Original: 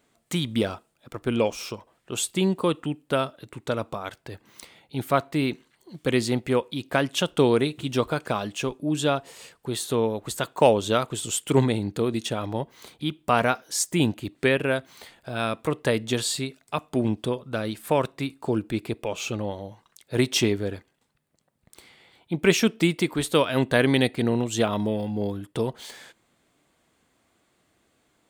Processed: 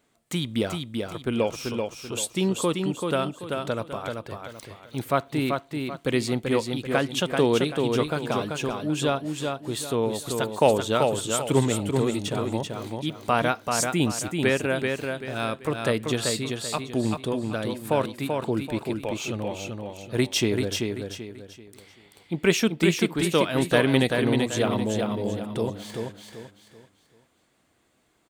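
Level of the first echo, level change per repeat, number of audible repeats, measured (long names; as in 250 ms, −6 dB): −4.5 dB, −9.5 dB, 4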